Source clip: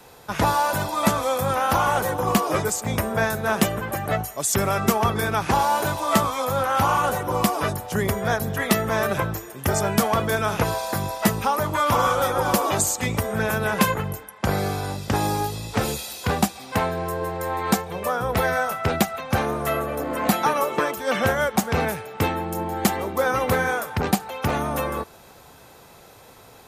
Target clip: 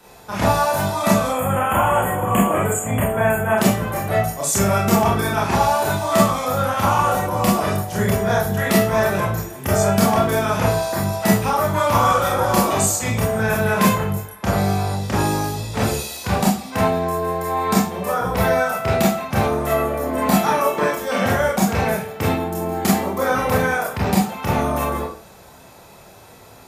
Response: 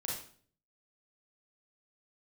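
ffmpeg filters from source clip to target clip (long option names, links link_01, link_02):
-filter_complex "[0:a]asettb=1/sr,asplit=3[link_01][link_02][link_03];[link_01]atrim=end=1.284[link_04];[link_02]atrim=start=1.28:end=3.58,asetpts=PTS-STARTPTS,afade=type=in:duration=0.004:curve=qsin,afade=type=out:start_time=2.296:duration=0.004:curve=qsin,asuperstop=centerf=4800:order=20:qfactor=1.4[link_05];[link_03]atrim=start=3.576[link_06];[link_04][link_05]acrossfade=duration=0.004:curve1=hsin:curve2=qsin[link_07];[link_07][link_06]acrossfade=duration=0.004:curve1=qsin:curve2=hsin[link_08];[1:a]atrim=start_sample=2205,afade=type=out:start_time=0.35:duration=0.01,atrim=end_sample=15876,asetrate=57330,aresample=44100[link_09];[link_08][link_09]afir=irnorm=-1:irlink=0,volume=3.5dB"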